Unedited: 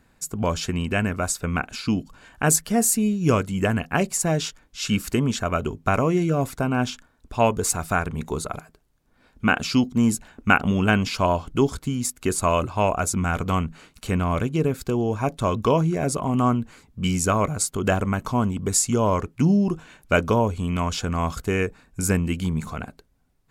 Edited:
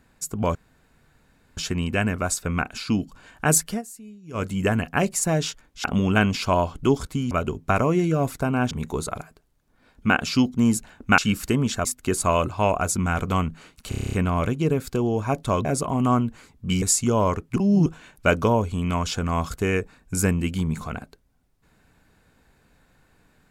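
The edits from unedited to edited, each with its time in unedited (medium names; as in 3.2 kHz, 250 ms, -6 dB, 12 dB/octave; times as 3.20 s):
0.55 s: insert room tone 1.02 s
2.68–3.43 s: dip -21 dB, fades 0.12 s
4.82–5.49 s: swap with 10.56–12.03 s
6.89–8.09 s: delete
14.07 s: stutter 0.03 s, 9 plays
15.59–15.99 s: delete
17.16–18.68 s: delete
19.42–19.72 s: reverse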